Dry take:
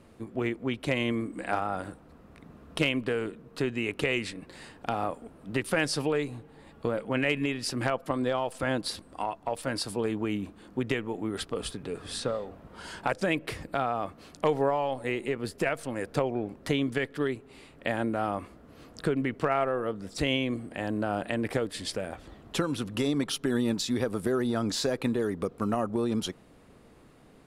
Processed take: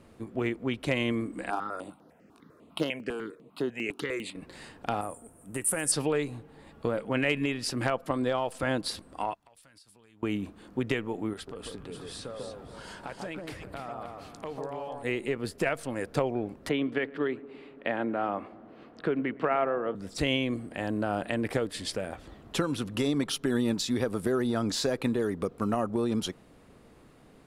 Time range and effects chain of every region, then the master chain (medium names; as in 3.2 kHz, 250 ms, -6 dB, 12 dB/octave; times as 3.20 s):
1.50–4.35 s: high-pass 210 Hz + stepped phaser 10 Hz 540–8000 Hz
5.01–5.92 s: resonant high shelf 6.3 kHz +14 dB, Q 3 + feedback comb 100 Hz, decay 1.5 s, harmonics odd, mix 50%
9.34–10.23 s: amplifier tone stack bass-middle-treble 5-5-5 + compression 8:1, threshold -54 dBFS
11.33–15.03 s: compression 2:1, threshold -44 dBFS + echo whose repeats swap between lows and highs 144 ms, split 1.2 kHz, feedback 56%, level -2 dB
16.69–19.95 s: three-band isolator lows -15 dB, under 170 Hz, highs -23 dB, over 3.6 kHz + filtered feedback delay 113 ms, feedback 84%, low-pass 1 kHz, level -19 dB
whole clip: none